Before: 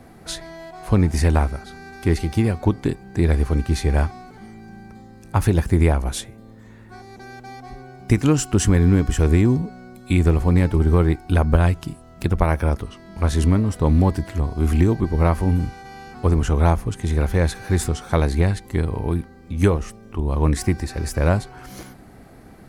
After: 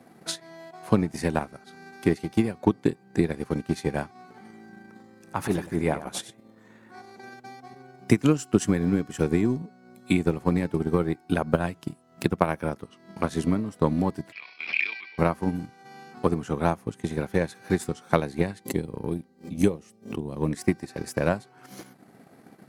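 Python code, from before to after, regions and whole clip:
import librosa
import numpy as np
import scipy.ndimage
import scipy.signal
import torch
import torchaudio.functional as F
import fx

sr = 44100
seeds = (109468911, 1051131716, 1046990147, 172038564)

y = fx.chain(x, sr, fx.peak_eq(hz=1200.0, db=3.5, octaves=2.9),
    fx.transient(attack_db=-10, sustain_db=0),
    fx.echo_single(ms=94, db=-8.5), at=(4.15, 7.34))
y = fx.chain(y, sr, fx.highpass_res(hz=2400.0, q=12.0),
    fx.resample_bad(factor=4, down='none', up='filtered'),
    fx.sustainer(db_per_s=52.0), at=(14.32, 15.18))
y = fx.chain(y, sr, fx.peak_eq(hz=1300.0, db=-10.0, octaves=1.5),
    fx.pre_swell(db_per_s=130.0), at=(18.65, 20.51))
y = scipy.signal.sosfilt(scipy.signal.butter(4, 140.0, 'highpass', fs=sr, output='sos'), y)
y = fx.transient(y, sr, attack_db=8, sustain_db=-7)
y = F.gain(torch.from_numpy(y), -6.5).numpy()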